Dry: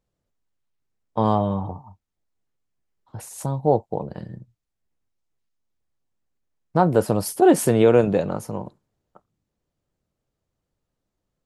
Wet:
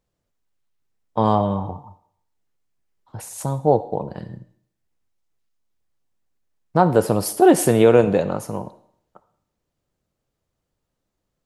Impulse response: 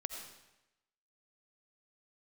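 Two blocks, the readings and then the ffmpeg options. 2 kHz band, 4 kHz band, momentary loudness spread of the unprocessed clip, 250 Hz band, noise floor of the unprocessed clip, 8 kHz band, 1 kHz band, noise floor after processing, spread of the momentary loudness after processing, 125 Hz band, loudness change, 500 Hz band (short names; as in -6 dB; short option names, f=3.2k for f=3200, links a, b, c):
+3.0 dB, +3.5 dB, 19 LU, +1.5 dB, -81 dBFS, +3.5 dB, +2.5 dB, -79 dBFS, 19 LU, +1.0 dB, +2.0 dB, +2.0 dB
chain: -filter_complex "[0:a]asplit=2[a][b];[1:a]atrim=start_sample=2205,asetrate=66150,aresample=44100,lowshelf=f=270:g=-12[c];[b][c]afir=irnorm=-1:irlink=0,volume=-1.5dB[d];[a][d]amix=inputs=2:normalize=0"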